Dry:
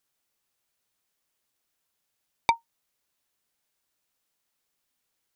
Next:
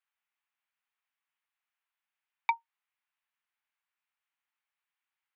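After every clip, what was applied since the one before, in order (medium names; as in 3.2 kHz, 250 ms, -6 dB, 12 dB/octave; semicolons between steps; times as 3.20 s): steep high-pass 780 Hz 36 dB/octave; resonant high shelf 3.7 kHz -14 dB, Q 1.5; trim -6 dB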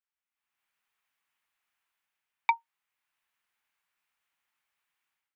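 level rider gain up to 15.5 dB; trim -8.5 dB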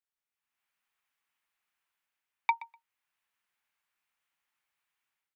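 feedback delay 124 ms, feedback 16%, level -18 dB; trim -2 dB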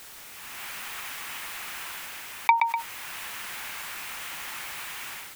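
level flattener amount 70%; trim +8 dB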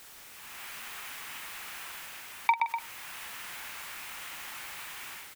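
doubling 46 ms -9.5 dB; trim -5.5 dB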